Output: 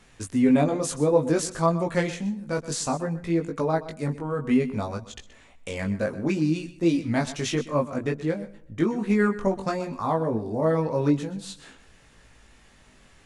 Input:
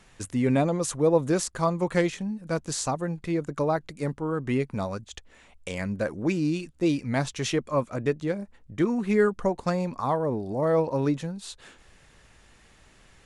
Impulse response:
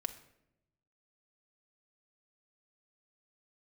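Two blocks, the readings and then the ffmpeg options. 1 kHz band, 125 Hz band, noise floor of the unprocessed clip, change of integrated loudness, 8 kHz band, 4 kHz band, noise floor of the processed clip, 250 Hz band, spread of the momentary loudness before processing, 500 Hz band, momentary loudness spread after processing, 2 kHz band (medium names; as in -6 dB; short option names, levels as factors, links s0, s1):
+1.0 dB, +1.0 dB, -57 dBFS, +1.5 dB, +0.5 dB, +0.5 dB, -55 dBFS, +2.5 dB, 10 LU, +0.5 dB, 11 LU, +1.0 dB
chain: -filter_complex "[0:a]equalizer=f=250:t=o:w=0.24:g=5,flanger=delay=18:depth=2.5:speed=0.58,asplit=2[s0][s1];[1:a]atrim=start_sample=2205,adelay=125[s2];[s1][s2]afir=irnorm=-1:irlink=0,volume=0.188[s3];[s0][s3]amix=inputs=2:normalize=0,volume=1.5"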